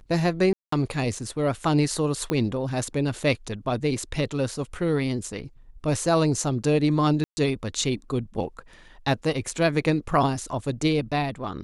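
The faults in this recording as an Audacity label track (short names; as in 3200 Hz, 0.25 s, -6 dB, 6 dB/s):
0.530000	0.720000	gap 0.194 s
2.300000	2.300000	pop -12 dBFS
7.240000	7.370000	gap 0.13 s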